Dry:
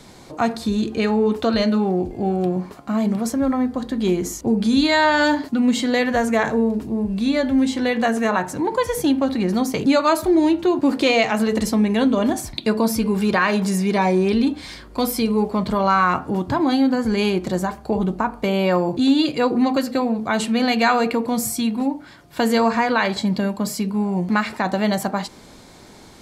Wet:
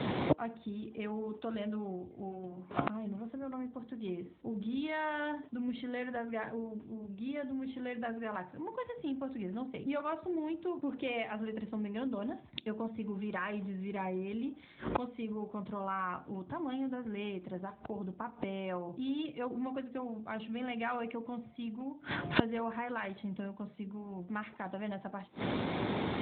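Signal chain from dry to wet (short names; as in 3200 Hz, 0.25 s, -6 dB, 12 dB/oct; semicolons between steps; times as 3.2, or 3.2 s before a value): flipped gate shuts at -26 dBFS, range -31 dB; gain +12.5 dB; AMR-NB 12.2 kbps 8000 Hz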